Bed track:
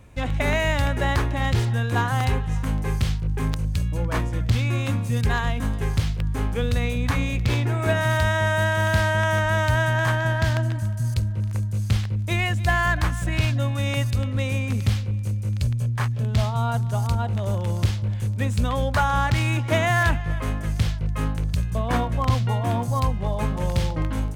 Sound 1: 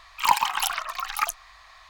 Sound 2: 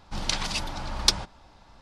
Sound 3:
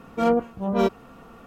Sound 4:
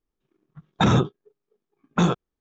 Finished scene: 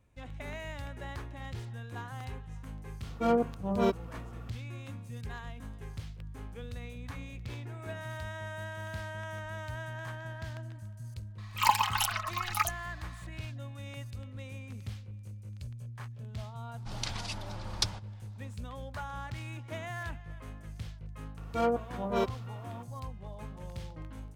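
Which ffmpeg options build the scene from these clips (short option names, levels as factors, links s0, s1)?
-filter_complex "[3:a]asplit=2[s0][s1];[0:a]volume=0.112[s2];[1:a]aecho=1:1:4.7:0.54[s3];[s1]highpass=f=370:p=1[s4];[s0]atrim=end=1.46,asetpts=PTS-STARTPTS,volume=0.501,afade=t=in:d=0.004:c=hsin,afade=t=out:st=1.456:d=0.004:c=hsin,adelay=3030[s5];[s3]atrim=end=1.89,asetpts=PTS-STARTPTS,volume=0.531,afade=t=in:d=0.004:c=hsin,afade=t=out:st=1.886:d=0.004:c=hsin,adelay=501858S[s6];[2:a]atrim=end=1.81,asetpts=PTS-STARTPTS,volume=0.335,afade=t=in:d=0.004:c=hsin,afade=t=out:st=1.806:d=0.004:c=hsin,adelay=16740[s7];[s4]atrim=end=1.46,asetpts=PTS-STARTPTS,volume=0.531,afade=t=in:d=0.004:c=hsin,afade=t=out:st=1.456:d=0.004:c=hsin,adelay=21370[s8];[s2][s5][s6][s7][s8]amix=inputs=5:normalize=0"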